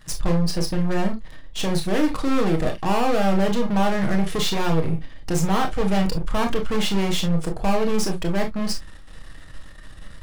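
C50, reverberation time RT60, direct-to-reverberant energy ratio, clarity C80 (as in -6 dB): 15.5 dB, no single decay rate, 2.5 dB, 54.0 dB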